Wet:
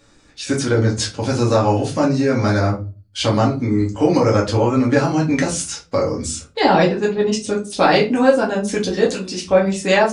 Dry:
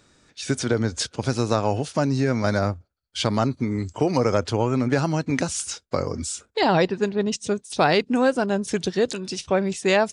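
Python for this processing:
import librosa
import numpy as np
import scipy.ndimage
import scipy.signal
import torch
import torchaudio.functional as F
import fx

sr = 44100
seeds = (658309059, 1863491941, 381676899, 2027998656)

y = fx.room_shoebox(x, sr, seeds[0], volume_m3=130.0, walls='furnished', distance_m=2.2)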